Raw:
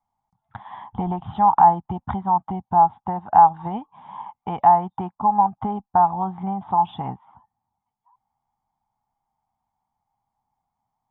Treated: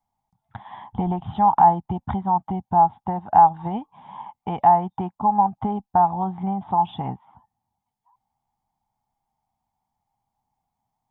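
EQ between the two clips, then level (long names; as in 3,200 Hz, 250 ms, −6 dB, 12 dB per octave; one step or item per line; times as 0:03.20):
parametric band 1,200 Hz −6 dB 1 octave
+2.0 dB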